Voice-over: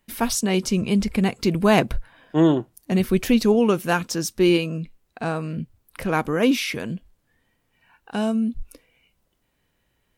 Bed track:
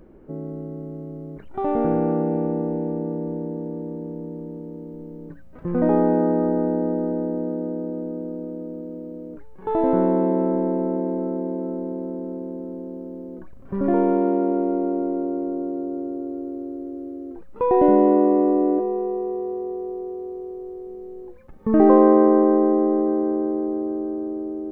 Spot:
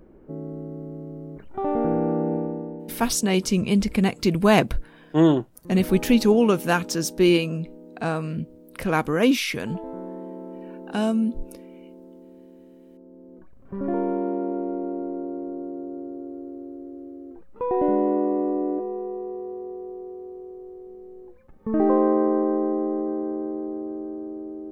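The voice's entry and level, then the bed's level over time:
2.80 s, 0.0 dB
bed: 2.34 s -2 dB
3.05 s -16.5 dB
12.83 s -16.5 dB
13.68 s -6 dB

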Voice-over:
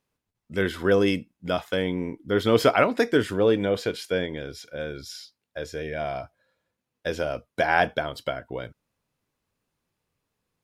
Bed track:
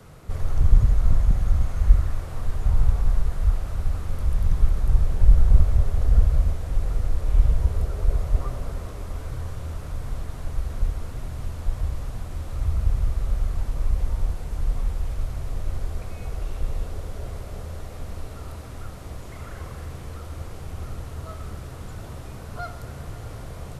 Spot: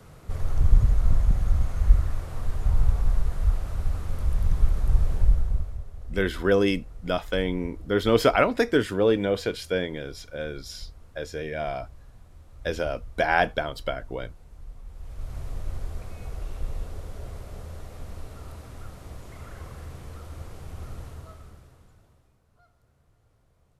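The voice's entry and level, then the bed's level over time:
5.60 s, -0.5 dB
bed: 5.16 s -2 dB
5.86 s -18 dB
14.84 s -18 dB
15.36 s -4.5 dB
21.06 s -4.5 dB
22.41 s -29 dB

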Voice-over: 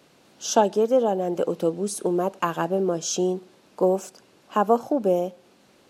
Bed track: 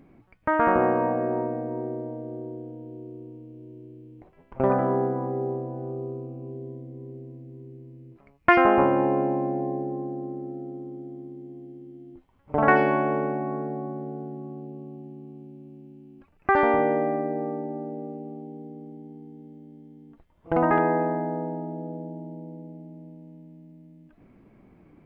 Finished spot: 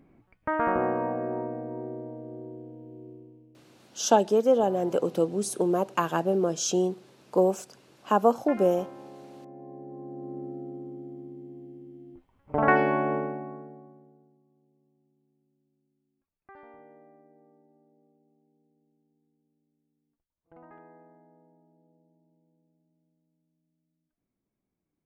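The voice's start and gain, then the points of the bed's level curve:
3.55 s, -1.5 dB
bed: 3.1 s -5 dB
4.04 s -23 dB
9.29 s -23 dB
10.39 s -2.5 dB
13.15 s -2.5 dB
14.45 s -30.5 dB

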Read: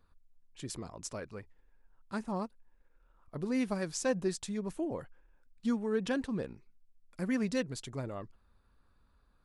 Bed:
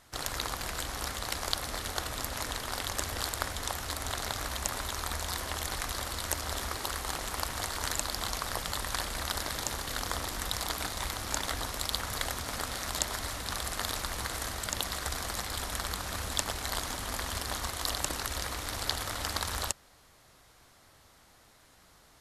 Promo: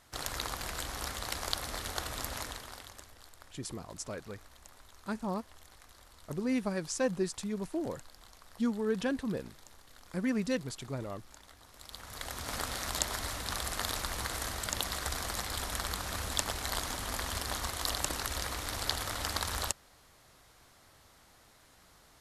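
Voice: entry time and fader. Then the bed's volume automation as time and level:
2.95 s, +0.5 dB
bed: 2.35 s -2.5 dB
3.19 s -22.5 dB
11.61 s -22.5 dB
12.52 s -1 dB

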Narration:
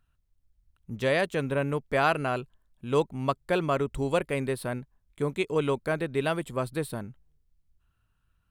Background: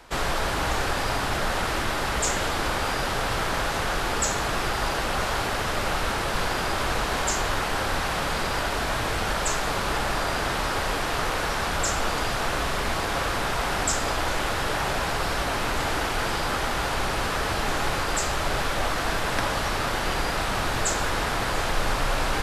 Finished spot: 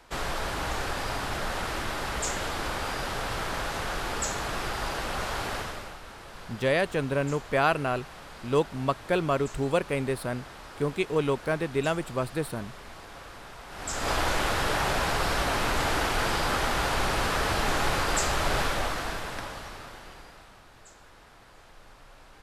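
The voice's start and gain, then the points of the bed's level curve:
5.60 s, +0.5 dB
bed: 5.57 s -5.5 dB
5.99 s -18.5 dB
13.67 s -18.5 dB
14.11 s -0.5 dB
18.62 s -0.5 dB
20.65 s -27.5 dB

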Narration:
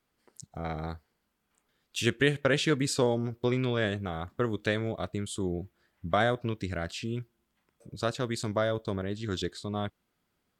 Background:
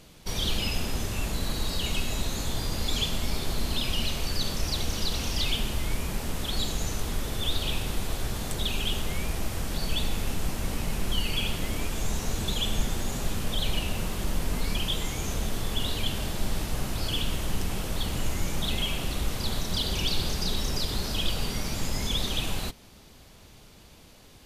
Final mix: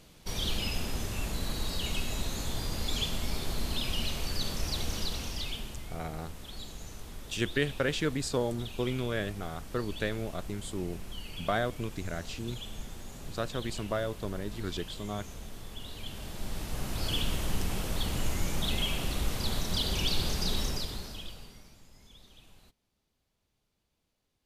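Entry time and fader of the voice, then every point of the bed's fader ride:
5.35 s, -4.0 dB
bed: 4.97 s -4 dB
5.95 s -14 dB
15.85 s -14 dB
17.1 s -2 dB
20.63 s -2 dB
21.85 s -27.5 dB

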